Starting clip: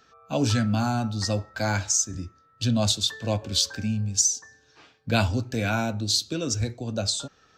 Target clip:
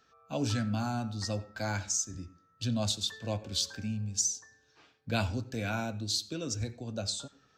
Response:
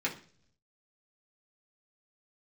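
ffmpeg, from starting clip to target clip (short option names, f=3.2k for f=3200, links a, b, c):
-filter_complex "[0:a]asplit=2[a][b];[1:a]atrim=start_sample=2205,adelay=87[c];[b][c]afir=irnorm=-1:irlink=0,volume=-24.5dB[d];[a][d]amix=inputs=2:normalize=0,volume=-8dB"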